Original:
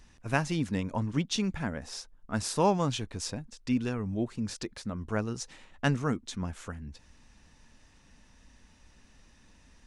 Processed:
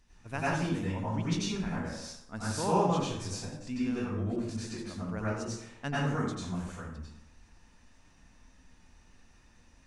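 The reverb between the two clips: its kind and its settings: plate-style reverb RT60 0.84 s, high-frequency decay 0.6×, pre-delay 80 ms, DRR -8.5 dB; trim -10 dB

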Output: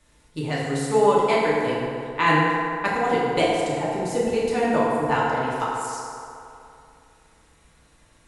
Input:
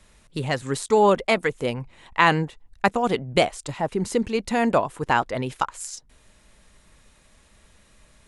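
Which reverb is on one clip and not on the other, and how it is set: FDN reverb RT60 2.7 s, low-frequency decay 0.75×, high-frequency decay 0.5×, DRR -7 dB; trim -7.5 dB

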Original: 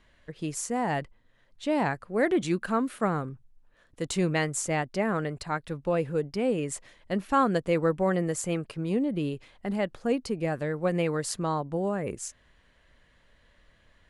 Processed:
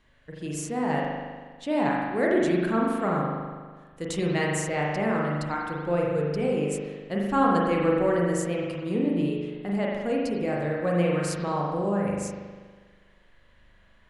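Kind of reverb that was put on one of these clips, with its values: spring tank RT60 1.5 s, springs 40 ms, chirp 60 ms, DRR -3 dB; trim -2.5 dB

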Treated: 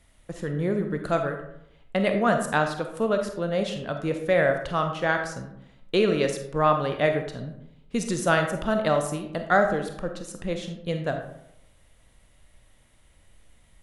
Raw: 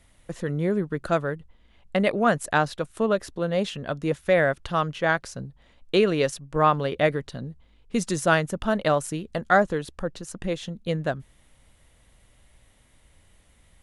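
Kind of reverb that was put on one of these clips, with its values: algorithmic reverb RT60 0.79 s, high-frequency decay 0.5×, pre-delay 5 ms, DRR 5 dB; trim -2 dB

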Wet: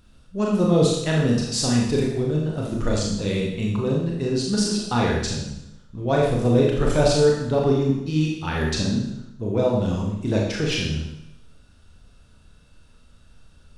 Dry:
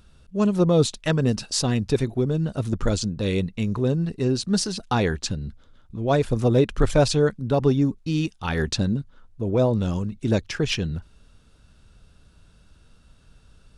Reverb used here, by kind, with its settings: Schroeder reverb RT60 0.85 s, combs from 26 ms, DRR -2.5 dB; trim -3 dB

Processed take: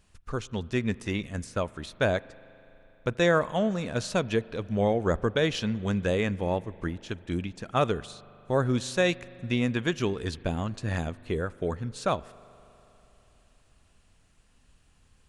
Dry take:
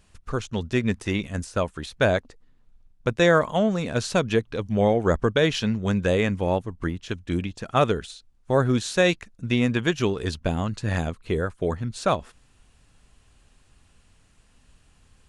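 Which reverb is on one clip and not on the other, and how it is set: spring tank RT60 3.5 s, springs 40 ms, chirp 40 ms, DRR 20 dB; trim -4.5 dB

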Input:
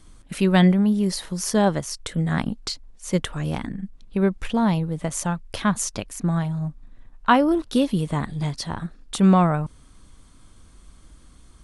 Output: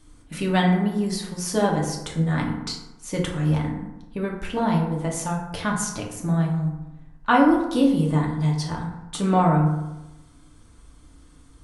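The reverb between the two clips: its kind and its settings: FDN reverb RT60 1 s, low-frequency decay 1×, high-frequency decay 0.45×, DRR -2 dB; trim -4.5 dB

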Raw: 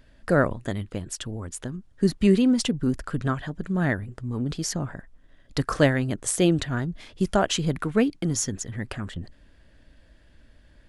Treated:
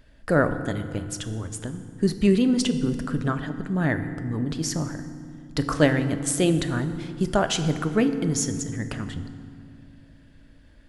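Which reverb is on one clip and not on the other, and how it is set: FDN reverb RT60 2.2 s, low-frequency decay 1.6×, high-frequency decay 0.6×, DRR 8.5 dB

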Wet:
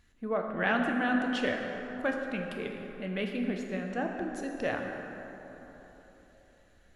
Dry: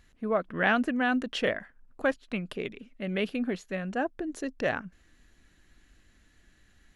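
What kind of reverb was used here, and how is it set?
plate-style reverb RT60 3.8 s, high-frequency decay 0.45×, DRR 1.5 dB; trim -4.5 dB

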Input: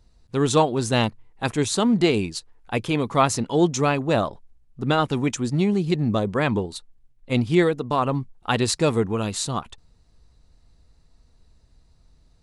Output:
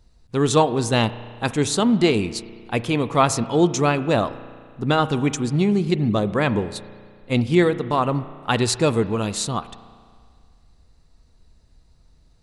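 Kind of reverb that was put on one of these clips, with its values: spring tank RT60 2 s, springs 34 ms, chirp 75 ms, DRR 14 dB; trim +1.5 dB

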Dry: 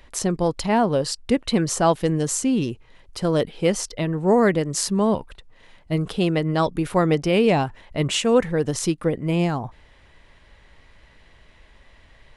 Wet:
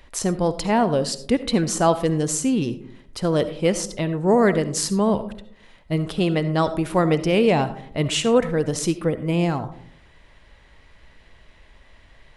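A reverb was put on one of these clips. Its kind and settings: algorithmic reverb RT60 0.63 s, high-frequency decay 0.3×, pre-delay 30 ms, DRR 12.5 dB

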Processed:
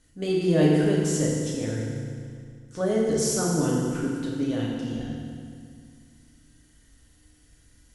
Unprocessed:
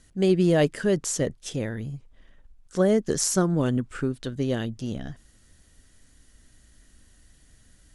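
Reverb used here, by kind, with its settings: FDN reverb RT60 2.1 s, low-frequency decay 1.25×, high-frequency decay 0.9×, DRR -5 dB; trim -7 dB

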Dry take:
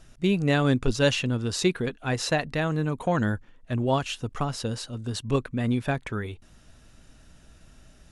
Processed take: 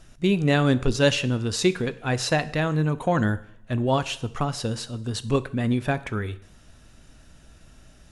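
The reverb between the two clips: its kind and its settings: two-slope reverb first 0.66 s, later 1.9 s, from -28 dB, DRR 13.5 dB; trim +2 dB

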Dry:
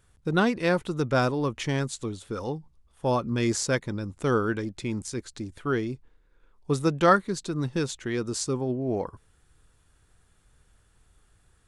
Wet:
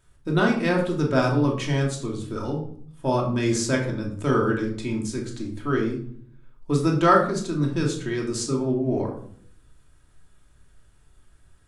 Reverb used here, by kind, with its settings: simulated room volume 790 m³, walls furnished, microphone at 2.8 m; trim -1.5 dB

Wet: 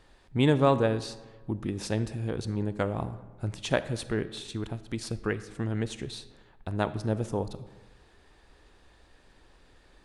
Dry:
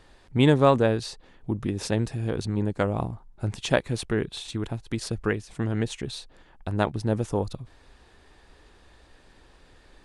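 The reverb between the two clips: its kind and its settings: algorithmic reverb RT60 1.3 s, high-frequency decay 0.6×, pre-delay 0 ms, DRR 13.5 dB; trim -4 dB

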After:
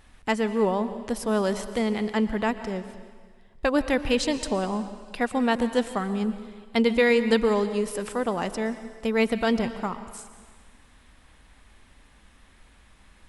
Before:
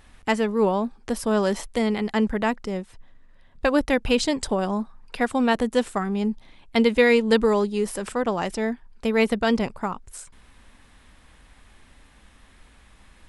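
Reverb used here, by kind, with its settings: plate-style reverb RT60 1.6 s, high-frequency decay 1×, pre-delay 105 ms, DRR 11.5 dB; trim -2.5 dB

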